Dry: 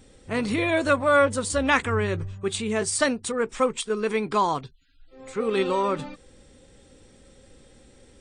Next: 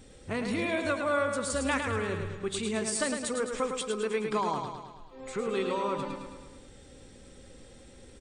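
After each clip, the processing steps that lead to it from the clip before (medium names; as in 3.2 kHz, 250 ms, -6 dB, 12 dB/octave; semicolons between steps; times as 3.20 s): compression 2:1, threshold -34 dBFS, peak gain reduction 11 dB; on a send: feedback delay 107 ms, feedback 57%, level -6 dB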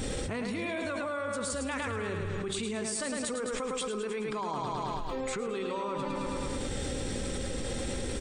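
level flattener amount 100%; trim -8 dB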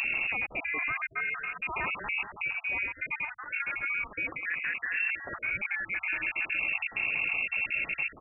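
random holes in the spectrogram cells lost 39%; frequency inversion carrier 2.7 kHz; trim +3 dB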